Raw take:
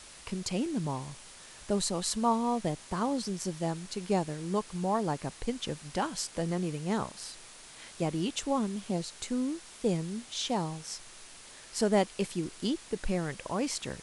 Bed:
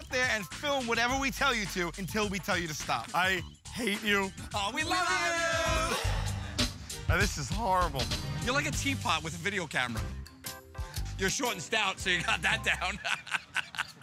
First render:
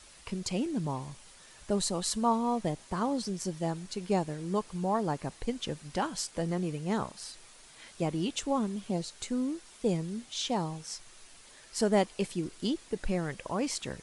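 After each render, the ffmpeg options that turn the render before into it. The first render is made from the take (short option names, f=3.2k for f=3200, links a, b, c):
-af "afftdn=nr=6:nf=-51"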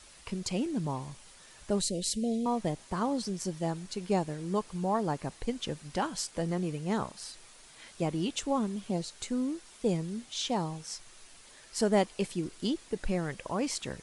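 -filter_complex "[0:a]asettb=1/sr,asplit=3[a][b][c];[a]atrim=end=1.814[d];[b]atrim=start=1.81:end=2.46,asetpts=PTS-STARTPTS,afade=t=in:d=0.004:c=qsin,afade=t=out:st=0.646:d=0.004:c=qsin,asuperstop=centerf=1100:order=8:qfactor=0.76[e];[c]atrim=start=2.456[f];[d][e]acrossfade=d=0.004:c1=hsin:c2=qsin[g];[g][f]acrossfade=d=0.004:c1=qsin:c2=hsin"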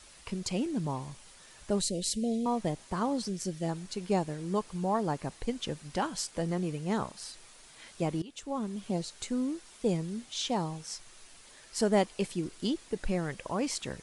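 -filter_complex "[0:a]asettb=1/sr,asplit=3[a][b][c];[a]atrim=end=3.284[d];[b]atrim=start=3.28:end=3.69,asetpts=PTS-STARTPTS,afade=t=in:d=0.004:c=qsin,afade=t=out:st=0.406:d=0.004:c=qsin,equalizer=f=950:t=o:w=0.57:g=-10.5[e];[c]atrim=start=3.686[f];[d][e]acrossfade=d=0.004:c1=hsin:c2=qsin[g];[g][f]acrossfade=d=0.004:c1=qsin:c2=hsin,asplit=2[h][i];[h]atrim=end=8.22,asetpts=PTS-STARTPTS,afade=t=out:st=8.216:d=0.004:c=hsin:silence=0.112202[j];[i]atrim=start=8.22,asetpts=PTS-STARTPTS,afade=t=in:d=0.66:silence=0.112202[k];[j][k]concat=n=2:v=0:a=1"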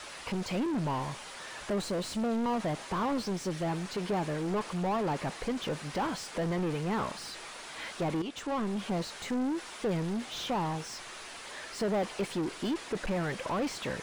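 -filter_complex "[0:a]asoftclip=type=hard:threshold=-25dB,asplit=2[a][b];[b]highpass=f=720:p=1,volume=27dB,asoftclip=type=tanh:threshold=-25dB[c];[a][c]amix=inputs=2:normalize=0,lowpass=f=1.5k:p=1,volume=-6dB"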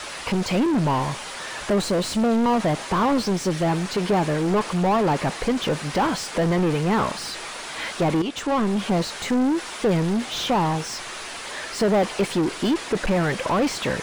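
-af "volume=10.5dB"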